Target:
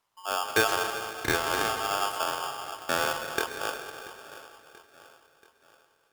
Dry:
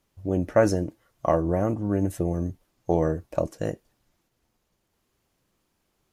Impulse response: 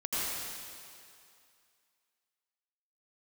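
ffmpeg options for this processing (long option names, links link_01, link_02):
-filter_complex "[0:a]aecho=1:1:683|1366|2049|2732:0.126|0.0617|0.0302|0.0148,asplit=2[link_01][link_02];[1:a]atrim=start_sample=2205,asetrate=36162,aresample=44100[link_03];[link_02][link_03]afir=irnorm=-1:irlink=0,volume=-13dB[link_04];[link_01][link_04]amix=inputs=2:normalize=0,aeval=exprs='val(0)*sgn(sin(2*PI*1000*n/s))':channel_layout=same,volume=-6.5dB"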